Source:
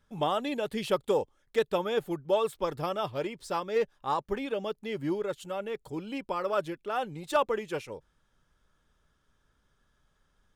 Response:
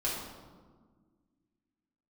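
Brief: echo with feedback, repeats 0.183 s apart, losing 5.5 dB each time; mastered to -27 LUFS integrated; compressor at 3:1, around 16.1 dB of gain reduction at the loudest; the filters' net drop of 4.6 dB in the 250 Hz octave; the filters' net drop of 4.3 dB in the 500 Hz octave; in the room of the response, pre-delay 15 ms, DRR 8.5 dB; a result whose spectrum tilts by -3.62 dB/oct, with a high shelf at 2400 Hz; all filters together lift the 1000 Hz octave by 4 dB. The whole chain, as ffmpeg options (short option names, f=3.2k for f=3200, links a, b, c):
-filter_complex "[0:a]equalizer=f=250:t=o:g=-4.5,equalizer=f=500:t=o:g=-6,equalizer=f=1k:t=o:g=7.5,highshelf=f=2.4k:g=-3.5,acompressor=threshold=-42dB:ratio=3,aecho=1:1:183|366|549|732|915|1098|1281:0.531|0.281|0.149|0.079|0.0419|0.0222|0.0118,asplit=2[a][b];[1:a]atrim=start_sample=2205,adelay=15[c];[b][c]afir=irnorm=-1:irlink=0,volume=-14.5dB[d];[a][d]amix=inputs=2:normalize=0,volume=14.5dB"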